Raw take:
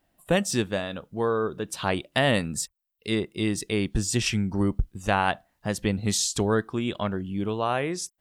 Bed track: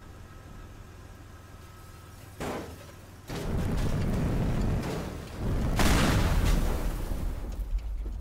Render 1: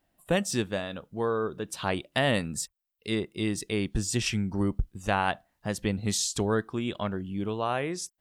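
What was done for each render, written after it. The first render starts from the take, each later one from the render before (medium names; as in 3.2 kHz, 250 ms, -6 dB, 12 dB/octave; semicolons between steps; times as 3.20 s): trim -3 dB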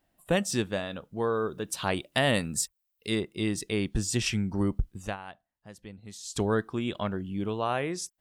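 1.33–3.21 s: treble shelf 5.9 kHz +6.5 dB; 5.00–6.40 s: dip -16.5 dB, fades 0.17 s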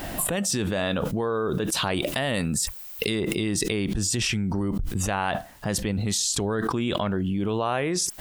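peak limiter -21 dBFS, peak gain reduction 9.5 dB; level flattener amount 100%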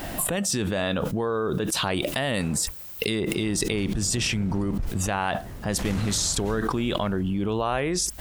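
add bed track -10.5 dB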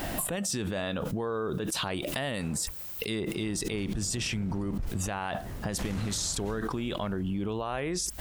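peak limiter -16 dBFS, peak gain reduction 8 dB; compression, threshold -28 dBFS, peak gain reduction 6.5 dB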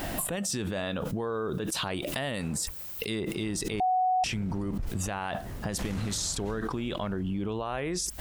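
3.80–4.24 s: bleep 741 Hz -22 dBFS; 6.34–7.85 s: treble shelf 9.4 kHz -6.5 dB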